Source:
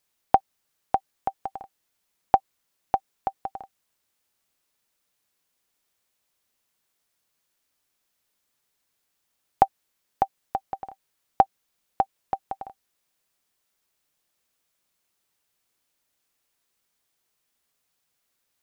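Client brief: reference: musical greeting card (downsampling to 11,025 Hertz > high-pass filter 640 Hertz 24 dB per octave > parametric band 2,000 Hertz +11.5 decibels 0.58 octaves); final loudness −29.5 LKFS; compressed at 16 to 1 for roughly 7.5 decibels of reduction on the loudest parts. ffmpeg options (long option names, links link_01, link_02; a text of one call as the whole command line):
ffmpeg -i in.wav -af "acompressor=threshold=-22dB:ratio=16,aresample=11025,aresample=44100,highpass=frequency=640:width=0.5412,highpass=frequency=640:width=1.3066,equalizer=frequency=2000:width_type=o:width=0.58:gain=11.5,volume=6dB" out.wav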